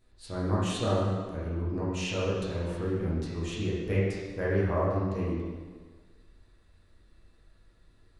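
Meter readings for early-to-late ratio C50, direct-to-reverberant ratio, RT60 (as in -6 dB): -1.5 dB, -8.0 dB, 1.5 s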